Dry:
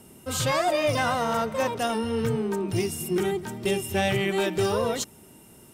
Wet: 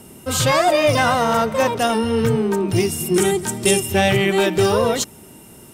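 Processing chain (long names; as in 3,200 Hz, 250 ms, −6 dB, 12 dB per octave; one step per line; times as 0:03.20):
0:03.14–0:03.80: parametric band 8,600 Hz +13.5 dB 1.3 octaves
level +8 dB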